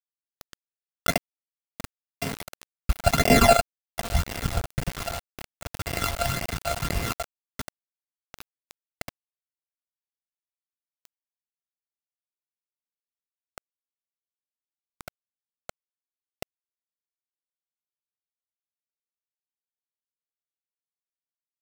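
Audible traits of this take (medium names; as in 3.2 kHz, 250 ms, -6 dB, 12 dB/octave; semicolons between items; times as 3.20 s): a buzz of ramps at a fixed pitch in blocks of 64 samples; phasing stages 12, 1.9 Hz, lowest notch 310–1300 Hz; a quantiser's noise floor 6-bit, dither none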